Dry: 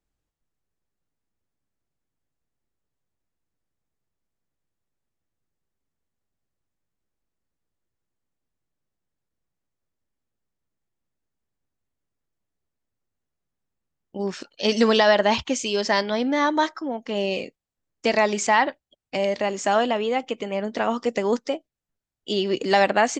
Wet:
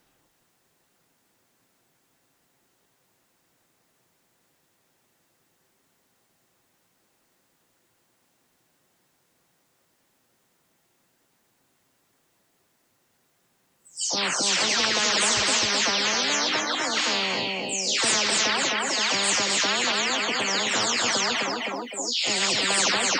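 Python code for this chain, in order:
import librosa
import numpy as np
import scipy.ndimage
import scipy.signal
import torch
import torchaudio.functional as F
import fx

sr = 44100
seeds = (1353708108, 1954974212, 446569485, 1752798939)

y = fx.spec_delay(x, sr, highs='early', ms=349)
y = fx.highpass(y, sr, hz=360.0, slope=6)
y = fx.echo_feedback(y, sr, ms=259, feedback_pct=25, wet_db=-11)
y = fx.spectral_comp(y, sr, ratio=10.0)
y = y * 10.0 ** (-1.0 / 20.0)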